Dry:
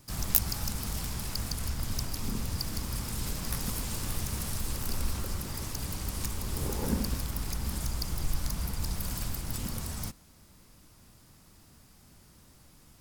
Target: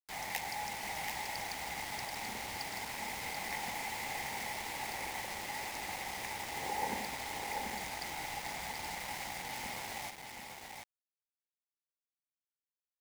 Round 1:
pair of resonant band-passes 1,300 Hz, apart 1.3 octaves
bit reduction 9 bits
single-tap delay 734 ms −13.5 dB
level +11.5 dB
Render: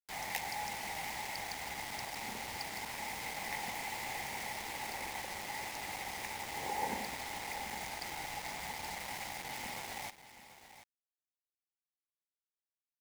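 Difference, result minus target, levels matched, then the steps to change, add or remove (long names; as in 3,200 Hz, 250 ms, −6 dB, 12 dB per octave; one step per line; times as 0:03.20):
echo-to-direct −8.5 dB
change: single-tap delay 734 ms −5 dB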